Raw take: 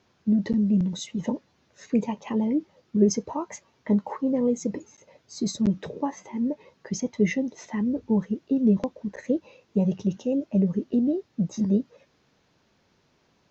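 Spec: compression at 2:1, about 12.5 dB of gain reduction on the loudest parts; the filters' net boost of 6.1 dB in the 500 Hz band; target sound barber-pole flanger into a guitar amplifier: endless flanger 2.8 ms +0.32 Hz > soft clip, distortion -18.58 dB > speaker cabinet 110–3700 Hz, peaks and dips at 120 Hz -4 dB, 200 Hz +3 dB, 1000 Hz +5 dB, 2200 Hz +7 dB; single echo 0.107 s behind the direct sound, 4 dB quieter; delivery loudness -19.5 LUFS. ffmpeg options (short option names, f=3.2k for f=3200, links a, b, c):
-filter_complex "[0:a]equalizer=f=500:t=o:g=7,acompressor=threshold=-35dB:ratio=2,aecho=1:1:107:0.631,asplit=2[a][b];[b]adelay=2.8,afreqshift=0.32[c];[a][c]amix=inputs=2:normalize=1,asoftclip=threshold=-23.5dB,highpass=110,equalizer=f=120:t=q:w=4:g=-4,equalizer=f=200:t=q:w=4:g=3,equalizer=f=1k:t=q:w=4:g=5,equalizer=f=2.2k:t=q:w=4:g=7,lowpass=f=3.7k:w=0.5412,lowpass=f=3.7k:w=1.3066,volume=15.5dB"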